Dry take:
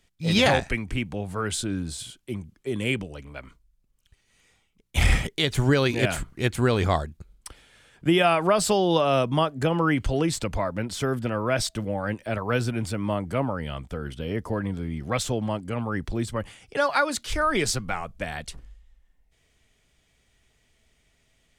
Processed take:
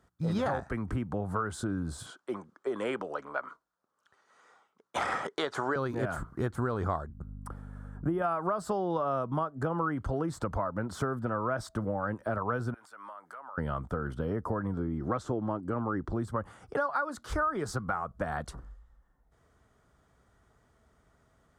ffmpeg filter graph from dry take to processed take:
-filter_complex "[0:a]asettb=1/sr,asplit=3[a][b][c];[a]atrim=end=2.064[d];[b]atrim=start=2.06:end=5.76,asetpts=PTS-STARTPTS,afade=t=in:d=0.004:c=qsin,afade=t=out:st=3.696:d=0.004:c=qsin,highpass=520,lowpass=6.6k,acontrast=30[e];[c]atrim=start=5.756[f];[d][e]acrossfade=d=0.004:c1=hsin:c2=qsin[g];[g][f]acrossfade=d=0.004:c1=qsin:c2=hsin,asettb=1/sr,asplit=3[h][i][j];[h]atrim=end=7.074[k];[i]atrim=start=7.07:end=8.22,asetpts=PTS-STARTPTS,afade=t=in:d=0.004:c=qsin,afade=t=out:st=1.146:d=0.004:c=qsin,equalizer=f=4.1k:t=o:w=2.1:g=-12,aeval=exprs='val(0)+0.00708*(sin(2*PI*50*n/s)+sin(2*PI*2*50*n/s)/2+sin(2*PI*3*50*n/s)/3+sin(2*PI*4*50*n/s)/4+sin(2*PI*5*50*n/s)/5)':c=same[l];[j]atrim=start=8.216[m];[k][l]acrossfade=d=0.004:c1=hsin:c2=qsin[n];[n][m]acrossfade=d=0.004:c1=qsin:c2=hsin,asettb=1/sr,asplit=3[o][p][q];[o]atrim=end=12.744[r];[p]atrim=start=12.74:end=13.58,asetpts=PTS-STARTPTS,afade=t=in:d=0.004:c=qsin,afade=t=out:st=0.836:d=0.004:c=qsin,highpass=1.2k,acompressor=threshold=-47dB:ratio=12:attack=3.2:release=140:knee=1:detection=peak[s];[q]atrim=start=13.576[t];[r][s]acrossfade=d=0.004:c1=hsin:c2=qsin[u];[u][t]acrossfade=d=0.004:c1=qsin:c2=hsin,asettb=1/sr,asplit=3[v][w][x];[v]atrim=end=14.774[y];[w]atrim=start=14.77:end=16.12,asetpts=PTS-STARTPTS,afade=t=in:d=0.004:c=qsin,afade=t=out:st=1.346:d=0.004:c=qsin,lowpass=8k,equalizer=f=330:w=2.4:g=8.5[z];[x]atrim=start=16.116[aa];[y][z]acrossfade=d=0.004:c1=hsin:c2=qsin[ab];[ab][aa]acrossfade=d=0.004:c1=qsin:c2=hsin,highpass=51,highshelf=f=1.8k:t=q:w=3:g=-11,acompressor=threshold=-32dB:ratio=5,volume=3dB"

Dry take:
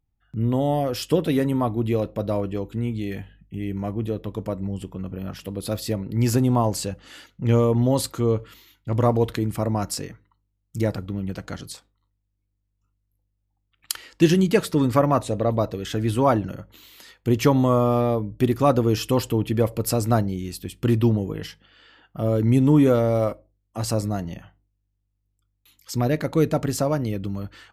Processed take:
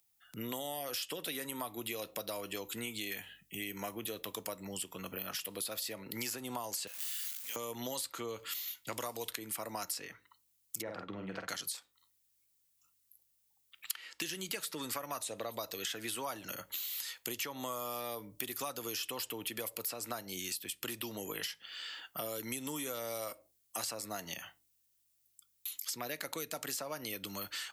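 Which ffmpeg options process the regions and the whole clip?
-filter_complex "[0:a]asettb=1/sr,asplit=3[a][b][c];[a]atrim=end=6.874[d];[b]atrim=start=6.87:end=7.56,asetpts=PTS-STARTPTS,afade=t=in:d=0.004:c=qsin,afade=t=out:st=0.686:d=0.004:c=qsin,aeval=exprs='val(0)+0.5*0.0224*sgn(val(0))':c=same,aderivative,asplit=2[e][f];[f]adelay=22,volume=-5.5dB[g];[e][g]amix=inputs=2:normalize=0,atrim=end_sample=30429[h];[c]atrim=start=7.556[i];[d][h]acrossfade=d=0.004:c1=hsin:c2=qsin[j];[j][i]acrossfade=d=0.004:c1=qsin:c2=hsin,asettb=1/sr,asplit=3[k][l][m];[k]atrim=end=10.824[n];[l]atrim=start=10.82:end=11.49,asetpts=PTS-STARTPTS,afade=t=in:d=0.004:c=qsin,afade=t=out:st=0.666:d=0.004:c=qsin,lowpass=1.4k,asplit=2[o][p];[p]adelay=48,volume=-6dB[q];[o][q]amix=inputs=2:normalize=0,atrim=end_sample=29547[r];[m]atrim=start=11.486[s];[n][r]acrossfade=d=0.004:c1=hsin:c2=qsin[t];[t][s]acrossfade=d=0.004:c1=qsin:c2=hsin,acrossover=split=88|180|3200[u][v][w][x];[u]acompressor=threshold=-38dB:ratio=4[y];[v]acompressor=threshold=-38dB:ratio=4[z];[w]acompressor=threshold=-25dB:ratio=4[aa];[x]acompressor=threshold=-49dB:ratio=4[ab];[y][z][aa][ab]amix=inputs=4:normalize=0,aderivative,acompressor=threshold=-55dB:ratio=5,volume=18dB"

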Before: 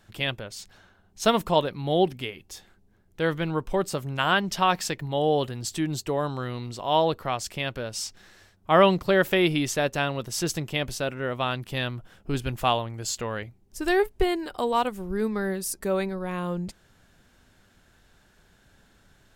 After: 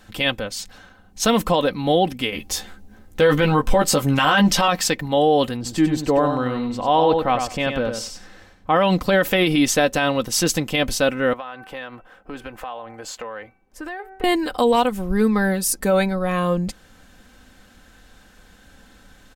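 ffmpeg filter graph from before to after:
-filter_complex "[0:a]asettb=1/sr,asplit=3[a][b][c];[a]atrim=end=2.324[d];[b]atrim=start=2.32:end=4.68,asetpts=PTS-STARTPTS,afade=t=in:d=0.004:c=qsin,afade=t=out:st=2.356:d=0.004:c=qsin,acontrast=33,asplit=2[e][f];[f]adelay=14,volume=-4dB[g];[e][g]amix=inputs=2:normalize=0,atrim=end_sample=104076[h];[c]atrim=start=4.676[i];[d][h]acrossfade=d=0.004:c1=hsin:c2=qsin[j];[j][i]acrossfade=d=0.004:c1=qsin:c2=hsin,asettb=1/sr,asplit=3[k][l][m];[k]atrim=end=5.564[n];[l]atrim=start=5.56:end=8.76,asetpts=PTS-STARTPTS,afade=t=in:d=0.004:c=qsin,afade=t=out:st=3.196:d=0.004:c=qsin,highshelf=f=2.9k:g=-11.5,aecho=1:1:95|190|285:0.473|0.0804|0.0137,atrim=end_sample=141120[o];[m]atrim=start=8.756[p];[n][o]acrossfade=d=0.004:c1=hsin:c2=qsin[q];[q][p]acrossfade=d=0.004:c1=qsin:c2=hsin,asettb=1/sr,asplit=3[r][s][t];[r]atrim=end=11.334[u];[s]atrim=start=11.33:end=14.24,asetpts=PTS-STARTPTS,afade=t=in:d=0.004:c=qsin,afade=t=out:st=2.906:d=0.004:c=qsin,acrossover=split=390 2200:gain=0.178 1 0.178[v][w][x];[v][w][x]amix=inputs=3:normalize=0,bandreject=f=382.4:t=h:w=4,bandreject=f=764.8:t=h:w=4,bandreject=f=1.1472k:t=h:w=4,bandreject=f=1.5296k:t=h:w=4,bandreject=f=1.912k:t=h:w=4,bandreject=f=2.2944k:t=h:w=4,bandreject=f=2.6768k:t=h:w=4,acompressor=threshold=-38dB:ratio=6:attack=3.2:release=140:knee=1:detection=peak[y];[t]atrim=start=14.236[z];[u][y]acrossfade=d=0.004:c1=hsin:c2=qsin[aa];[aa][z]acrossfade=d=0.004:c1=qsin:c2=hsin,aecho=1:1:3.9:0.55,alimiter=limit=-16.5dB:level=0:latency=1:release=48,volume=8.5dB"

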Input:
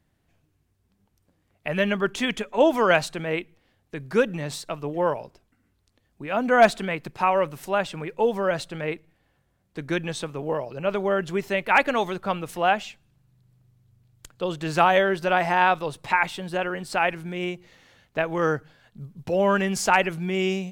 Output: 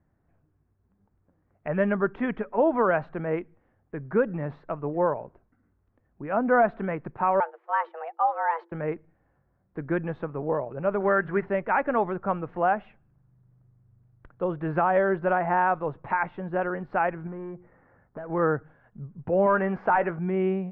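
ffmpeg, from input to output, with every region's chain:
-filter_complex "[0:a]asettb=1/sr,asplit=3[a][b][c];[a]atrim=end=7.404[d];[b]atrim=start=7.4:end=8.72,asetpts=PTS-STARTPTS,afade=t=in:d=0.004:c=qsin,afade=t=out:st=1.316:d=0.004:c=qsin,agate=range=-12dB:threshold=-37dB:ratio=16:release=100:detection=peak,lowshelf=f=390:g=-5,afreqshift=330[e];[c]atrim=start=8.716[f];[d][e]acrossfade=d=0.004:c1=hsin:c2=qsin[g];[g][f]acrossfade=d=0.004:c1=qsin:c2=hsin,asettb=1/sr,asplit=3[h][i][j];[h]atrim=end=11.004[k];[i]atrim=start=11:end=11.46,asetpts=PTS-STARTPTS,afade=t=in:d=0.004:c=qsin,afade=t=out:st=0.456:d=0.004:c=qsin,equalizer=f=1.7k:t=o:w=0.93:g=11.5,bandreject=f=60:t=h:w=6,bandreject=f=120:t=h:w=6,bandreject=f=180:t=h:w=6,bandreject=f=240:t=h:w=6,bandreject=f=300:t=h:w=6,acrusher=bits=4:mode=log:mix=0:aa=0.000001[l];[j]atrim=start=11.456[m];[k][l]acrossfade=d=0.004:c1=hsin:c2=qsin[n];[n][m]acrossfade=d=0.004:c1=qsin:c2=hsin,asettb=1/sr,asplit=3[o][p][q];[o]atrim=end=17.274[r];[p]atrim=start=17.27:end=18.3,asetpts=PTS-STARTPTS,afade=t=in:d=0.004:c=qsin,afade=t=out:st=1.026:d=0.004:c=qsin,lowpass=f=1.9k:w=0.5412,lowpass=f=1.9k:w=1.3066,acompressor=threshold=-32dB:ratio=4:attack=3.2:release=140:knee=1:detection=peak,asoftclip=type=hard:threshold=-32.5dB[s];[q]atrim=start=18.296[t];[r][s]acrossfade=d=0.004:c1=hsin:c2=qsin[u];[u][t]acrossfade=d=0.004:c1=qsin:c2=hsin,asettb=1/sr,asplit=3[v][w][x];[v]atrim=end=19.464[y];[w]atrim=start=19.46:end=20.19,asetpts=PTS-STARTPTS,afade=t=in:d=0.004:c=qsin,afade=t=out:st=0.726:d=0.004:c=qsin,equalizer=f=10k:t=o:w=2.6:g=-11.5,asplit=2[z][aa];[aa]highpass=f=720:p=1,volume=12dB,asoftclip=type=tanh:threshold=-6.5dB[ab];[z][ab]amix=inputs=2:normalize=0,lowpass=f=4.7k:p=1,volume=-6dB,asplit=2[ac][ad];[ad]adelay=17,volume=-14dB[ae];[ac][ae]amix=inputs=2:normalize=0,atrim=end_sample=32193[af];[x]atrim=start=20.186[ag];[y][af]acrossfade=d=0.004:c1=hsin:c2=qsin[ah];[ah][ag]acrossfade=d=0.004:c1=qsin:c2=hsin,lowpass=f=1.6k:w=0.5412,lowpass=f=1.6k:w=1.3066,alimiter=limit=-12.5dB:level=0:latency=1:release=172"

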